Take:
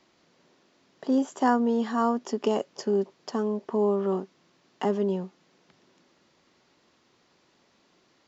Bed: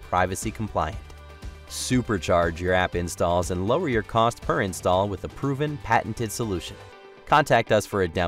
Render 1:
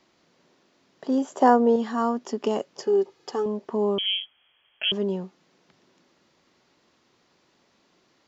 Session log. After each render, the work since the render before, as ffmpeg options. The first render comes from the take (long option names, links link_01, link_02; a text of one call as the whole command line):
ffmpeg -i in.wav -filter_complex "[0:a]asettb=1/sr,asplit=3[link_01][link_02][link_03];[link_01]atrim=end=1.304[link_04];[link_02]atrim=start=1.3:end=1.76,asetpts=PTS-STARTPTS,afade=type=in:duration=0.004:curve=qsin,afade=type=out:start_time=0.456:duration=0.004:curve=qsin,equalizer=frequency=560:width=1:gain=10[link_05];[link_03]atrim=start=1.756[link_06];[link_04][link_05]acrossfade=duration=0.004:curve1=hsin:curve2=qsin[link_07];[link_07][link_06]acrossfade=duration=0.004:curve1=qsin:curve2=hsin,asettb=1/sr,asplit=3[link_08][link_09][link_10];[link_08]atrim=end=2.824[link_11];[link_09]atrim=start=2.82:end=3.46,asetpts=PTS-STARTPTS,afade=type=in:duration=0.004:curve=qsin,afade=type=out:start_time=0.636:duration=0.004:curve=qsin,aecho=1:1:2.4:0.72,atrim=end_sample=28224[link_12];[link_10]atrim=start=3.456[link_13];[link_11][link_12]acrossfade=duration=0.004:curve1=hsin:curve2=qsin[link_14];[link_14][link_13]acrossfade=duration=0.004:curve1=qsin:curve2=hsin,asettb=1/sr,asplit=3[link_15][link_16][link_17];[link_15]atrim=end=3.984[link_18];[link_16]atrim=start=3.98:end=4.92,asetpts=PTS-STARTPTS,afade=type=in:duration=0.004:curve=qsin,afade=type=out:start_time=0.936:duration=0.004:curve=qsin,lowpass=frequency=3000:width_type=q:width=0.5098,lowpass=frequency=3000:width_type=q:width=0.6013,lowpass=frequency=3000:width_type=q:width=0.9,lowpass=frequency=3000:width_type=q:width=2.563,afreqshift=-3500[link_19];[link_17]atrim=start=4.916[link_20];[link_18][link_19]acrossfade=duration=0.004:curve1=hsin:curve2=qsin[link_21];[link_21][link_20]acrossfade=duration=0.004:curve1=qsin:curve2=hsin" out.wav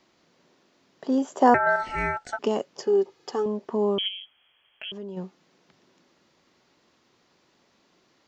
ffmpeg -i in.wav -filter_complex "[0:a]asettb=1/sr,asplit=3[link_01][link_02][link_03];[link_01]atrim=end=1.544[link_04];[link_02]atrim=start=1.54:end=2.39,asetpts=PTS-STARTPTS,afade=type=in:duration=0.004:curve=qsin,afade=type=out:start_time=0.846:duration=0.004:curve=qsin,aeval=exprs='val(0)*sin(2*PI*1100*n/s)':channel_layout=same[link_05];[link_03]atrim=start=2.386[link_06];[link_04][link_05]acrossfade=duration=0.004:curve1=hsin:curve2=qsin[link_07];[link_07][link_06]acrossfade=duration=0.004:curve1=qsin:curve2=hsin,asplit=3[link_08][link_09][link_10];[link_08]afade=type=out:start_time=4.07:duration=0.02[link_11];[link_09]acompressor=threshold=-39dB:ratio=2.5:attack=3.2:release=140:knee=1:detection=peak,afade=type=in:start_time=4.07:duration=0.02,afade=type=out:start_time=5.16:duration=0.02[link_12];[link_10]afade=type=in:start_time=5.16:duration=0.02[link_13];[link_11][link_12][link_13]amix=inputs=3:normalize=0" out.wav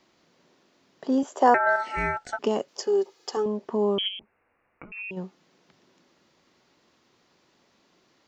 ffmpeg -i in.wav -filter_complex "[0:a]asettb=1/sr,asplit=3[link_01][link_02][link_03];[link_01]atrim=end=1.234[link_04];[link_02]atrim=start=1.23:end=1.97,asetpts=PTS-STARTPTS,afade=type=in:duration=0.004:curve=qsin,afade=type=out:start_time=0.736:duration=0.004:curve=qsin,highpass=340[link_05];[link_03]atrim=start=1.966[link_06];[link_04][link_05]acrossfade=duration=0.004:curve1=hsin:curve2=qsin[link_07];[link_07][link_06]acrossfade=duration=0.004:curve1=qsin:curve2=hsin,asettb=1/sr,asplit=3[link_08][link_09][link_10];[link_08]atrim=end=2.684[link_11];[link_09]atrim=start=2.68:end=3.37,asetpts=PTS-STARTPTS,afade=type=in:duration=0.004:curve=qsin,afade=type=out:start_time=0.686:duration=0.004:curve=qsin,bass=frequency=250:gain=-12,treble=frequency=4000:gain=7[link_12];[link_10]atrim=start=3.366[link_13];[link_11][link_12]acrossfade=duration=0.004:curve1=hsin:curve2=qsin[link_14];[link_14][link_13]acrossfade=duration=0.004:curve1=qsin:curve2=hsin,asettb=1/sr,asplit=3[link_15][link_16][link_17];[link_15]atrim=end=4.194[link_18];[link_16]atrim=start=4.19:end=5.11,asetpts=PTS-STARTPTS,afade=type=in:duration=0.004:curve=qsin,afade=type=out:start_time=0.916:duration=0.004:curve=qsin,lowpass=frequency=2500:width_type=q:width=0.5098,lowpass=frequency=2500:width_type=q:width=0.6013,lowpass=frequency=2500:width_type=q:width=0.9,lowpass=frequency=2500:width_type=q:width=2.563,afreqshift=-2900[link_19];[link_17]atrim=start=5.106[link_20];[link_18][link_19]acrossfade=duration=0.004:curve1=hsin:curve2=qsin[link_21];[link_21][link_20]acrossfade=duration=0.004:curve1=qsin:curve2=hsin" out.wav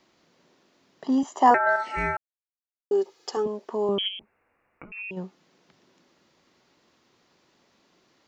ffmpeg -i in.wav -filter_complex "[0:a]asettb=1/sr,asplit=3[link_01][link_02][link_03];[link_01]atrim=end=1.044[link_04];[link_02]atrim=start=1.04:end=1.51,asetpts=PTS-STARTPTS,afade=type=in:duration=0.004:curve=qsin,afade=type=out:start_time=0.466:duration=0.004:curve=qsin,aecho=1:1:1:0.65,atrim=end_sample=20727[link_05];[link_03]atrim=start=1.506[link_06];[link_04][link_05]acrossfade=duration=0.004:curve1=hsin:curve2=qsin[link_07];[link_07][link_06]acrossfade=duration=0.004:curve1=qsin:curve2=hsin,asettb=1/sr,asplit=3[link_08][link_09][link_10];[link_08]atrim=end=3.474[link_11];[link_09]atrim=start=3.47:end=3.89,asetpts=PTS-STARTPTS,afade=type=in:duration=0.004:curve=qsin,afade=type=out:start_time=0.416:duration=0.004:curve=qsin,bass=frequency=250:gain=-12,treble=frequency=4000:gain=4[link_12];[link_10]atrim=start=3.886[link_13];[link_11][link_12]acrossfade=duration=0.004:curve1=hsin:curve2=qsin[link_14];[link_14][link_13]acrossfade=duration=0.004:curve1=qsin:curve2=hsin,asplit=3[link_15][link_16][link_17];[link_15]atrim=end=2.17,asetpts=PTS-STARTPTS,afade=type=out:start_time=2.166:duration=0.004:curve=hsin[link_18];[link_16]atrim=start=2.17:end=2.91,asetpts=PTS-STARTPTS,volume=0[link_19];[link_17]atrim=start=2.91,asetpts=PTS-STARTPTS,afade=type=in:duration=0.004:curve=hsin[link_20];[link_18][link_19][link_20]concat=n=3:v=0:a=1" out.wav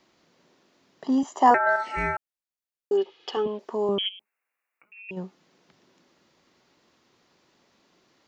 ffmpeg -i in.wav -filter_complex "[0:a]asettb=1/sr,asplit=3[link_01][link_02][link_03];[link_01]atrim=end=2.974[link_04];[link_02]atrim=start=2.97:end=3.59,asetpts=PTS-STARTPTS,afade=type=in:duration=0.004:curve=qsin,afade=type=out:start_time=0.616:duration=0.004:curve=qsin,lowpass=frequency=3100:width_type=q:width=4.7[link_05];[link_03]atrim=start=3.586[link_06];[link_04][link_05]acrossfade=duration=0.004:curve1=hsin:curve2=qsin[link_07];[link_07][link_06]acrossfade=duration=0.004:curve1=qsin:curve2=hsin,asettb=1/sr,asplit=3[link_08][link_09][link_10];[link_08]atrim=end=4.094[link_11];[link_09]atrim=start=4.09:end=5.09,asetpts=PTS-STARTPTS,afade=type=in:duration=0.004:curve=qsin,afade=type=out:start_time=0.996:duration=0.004:curve=qsin,aderivative[link_12];[link_10]atrim=start=5.086[link_13];[link_11][link_12]acrossfade=duration=0.004:curve1=hsin:curve2=qsin[link_14];[link_14][link_13]acrossfade=duration=0.004:curve1=qsin:curve2=hsin" out.wav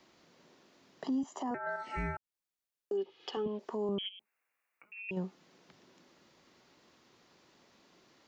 ffmpeg -i in.wav -filter_complex "[0:a]acrossover=split=290[link_01][link_02];[link_02]acompressor=threshold=-38dB:ratio=3[link_03];[link_01][link_03]amix=inputs=2:normalize=0,alimiter=level_in=2.5dB:limit=-24dB:level=0:latency=1:release=317,volume=-2.5dB" out.wav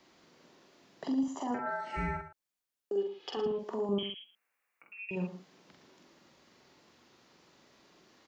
ffmpeg -i in.wav -filter_complex "[0:a]asplit=2[link_01][link_02];[link_02]adelay=45,volume=-3.5dB[link_03];[link_01][link_03]amix=inputs=2:normalize=0,asplit=2[link_04][link_05];[link_05]aecho=0:1:113:0.251[link_06];[link_04][link_06]amix=inputs=2:normalize=0" out.wav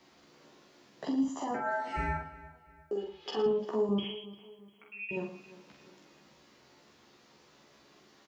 ffmpeg -i in.wav -filter_complex "[0:a]asplit=2[link_01][link_02];[link_02]adelay=14,volume=-2.5dB[link_03];[link_01][link_03]amix=inputs=2:normalize=0,asplit=2[link_04][link_05];[link_05]adelay=349,lowpass=frequency=4800:poles=1,volume=-18dB,asplit=2[link_06][link_07];[link_07]adelay=349,lowpass=frequency=4800:poles=1,volume=0.41,asplit=2[link_08][link_09];[link_09]adelay=349,lowpass=frequency=4800:poles=1,volume=0.41[link_10];[link_04][link_06][link_08][link_10]amix=inputs=4:normalize=0" out.wav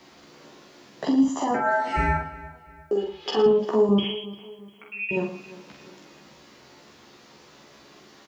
ffmpeg -i in.wav -af "volume=10dB" out.wav